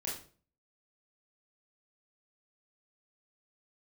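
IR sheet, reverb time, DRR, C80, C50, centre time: 0.40 s, −6.0 dB, 10.5 dB, 5.0 dB, 38 ms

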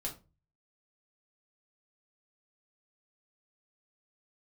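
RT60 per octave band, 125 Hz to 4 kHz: 0.65, 0.40, 0.35, 0.25, 0.25, 0.20 seconds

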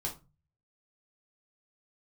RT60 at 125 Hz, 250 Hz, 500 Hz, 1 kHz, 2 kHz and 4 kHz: 0.70, 0.45, 0.30, 0.25, 0.25, 0.20 seconds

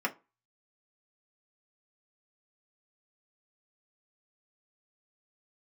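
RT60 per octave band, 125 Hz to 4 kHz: 0.30, 0.25, 0.25, 0.30, 0.20, 0.20 seconds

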